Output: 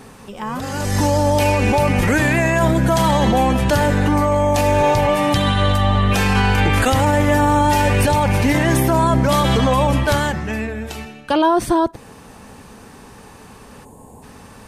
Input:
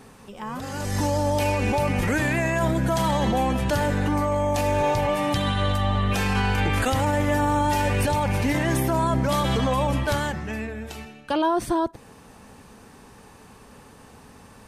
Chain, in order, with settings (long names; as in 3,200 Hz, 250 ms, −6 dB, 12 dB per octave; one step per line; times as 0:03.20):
gain on a spectral selection 0:13.84–0:14.23, 1,100–6,500 Hz −16 dB
level +7 dB